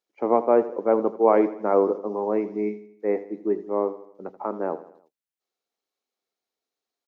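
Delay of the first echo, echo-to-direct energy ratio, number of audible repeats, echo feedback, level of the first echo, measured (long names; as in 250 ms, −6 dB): 81 ms, −14.0 dB, 4, 48%, −15.0 dB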